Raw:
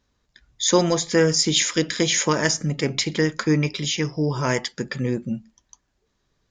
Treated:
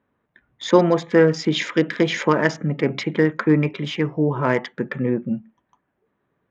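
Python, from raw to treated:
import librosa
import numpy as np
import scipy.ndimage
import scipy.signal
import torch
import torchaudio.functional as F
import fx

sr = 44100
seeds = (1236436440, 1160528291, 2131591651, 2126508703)

y = fx.wiener(x, sr, points=9)
y = fx.bandpass_edges(y, sr, low_hz=150.0, high_hz=2300.0)
y = F.gain(torch.from_numpy(y), 4.0).numpy()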